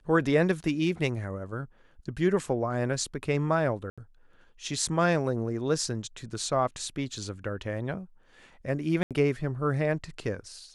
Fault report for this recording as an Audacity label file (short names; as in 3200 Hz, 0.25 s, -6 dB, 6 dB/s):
3.900000	3.980000	gap 76 ms
9.030000	9.110000	gap 77 ms